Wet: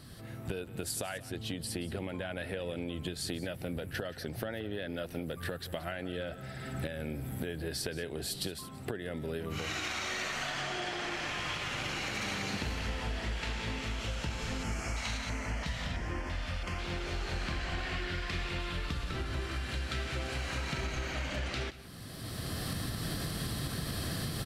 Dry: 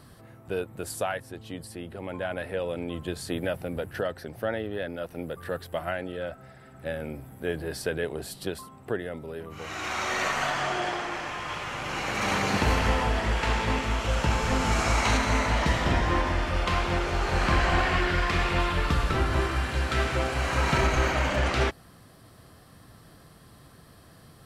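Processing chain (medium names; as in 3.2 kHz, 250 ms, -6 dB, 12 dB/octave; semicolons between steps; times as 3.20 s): recorder AGC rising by 21 dB/s; ten-band graphic EQ 500 Hz -3 dB, 1 kHz -7 dB, 4 kHz +4 dB; compression, threshold -33 dBFS, peak gain reduction 13 dB; 14.63–16.79 s: LFO notch square 1.5 Hz 350–3800 Hz; delay 177 ms -16.5 dB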